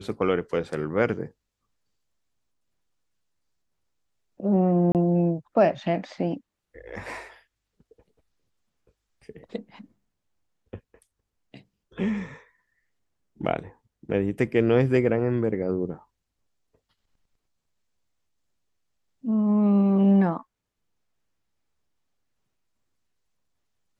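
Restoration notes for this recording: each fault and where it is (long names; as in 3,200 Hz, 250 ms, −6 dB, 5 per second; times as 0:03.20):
0:04.92–0:04.95: drop-out 28 ms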